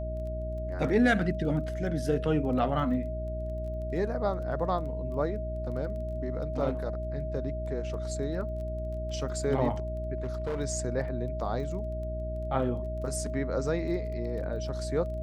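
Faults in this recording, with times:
surface crackle 13 per second −40 dBFS
mains hum 60 Hz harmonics 6 −35 dBFS
whistle 630 Hz −36 dBFS
0:10.18–0:10.61: clipping −28 dBFS

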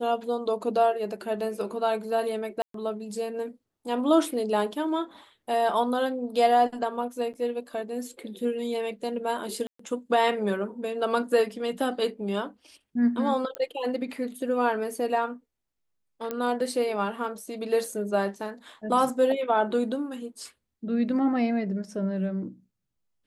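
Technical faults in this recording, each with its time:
0:02.62–0:02.74: drop-out 123 ms
0:07.33–0:07.34: drop-out 8.3 ms
0:09.67–0:09.79: drop-out 124 ms
0:13.55: click −18 dBFS
0:16.31: click −17 dBFS

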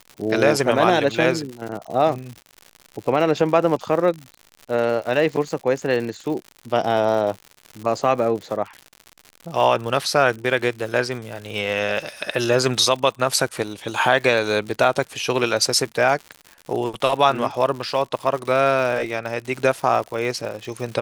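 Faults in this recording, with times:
surface crackle 120 per second −29 dBFS

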